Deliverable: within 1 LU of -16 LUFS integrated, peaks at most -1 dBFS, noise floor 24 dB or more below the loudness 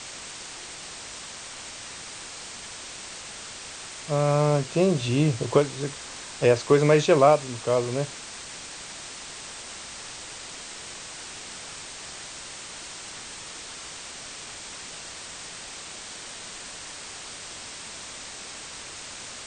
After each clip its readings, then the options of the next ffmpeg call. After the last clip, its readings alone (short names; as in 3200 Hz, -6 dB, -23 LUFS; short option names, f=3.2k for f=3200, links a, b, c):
noise floor -40 dBFS; noise floor target -53 dBFS; loudness -28.5 LUFS; peak -5.5 dBFS; loudness target -16.0 LUFS
-> -af "afftdn=nr=13:nf=-40"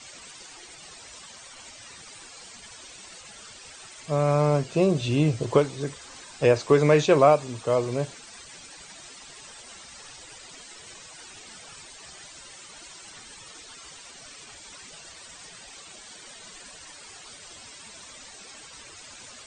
noise floor -46 dBFS; noise floor target -47 dBFS
-> -af "afftdn=nr=6:nf=-46"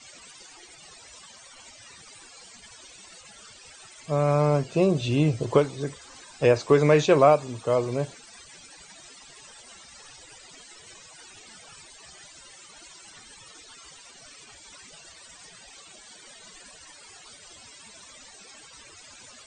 noise floor -50 dBFS; loudness -22.5 LUFS; peak -5.5 dBFS; loudness target -16.0 LUFS
-> -af "volume=6.5dB,alimiter=limit=-1dB:level=0:latency=1"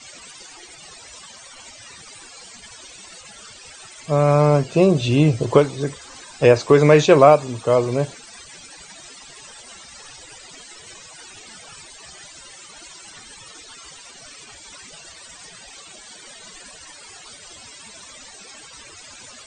loudness -16.5 LUFS; peak -1.0 dBFS; noise floor -43 dBFS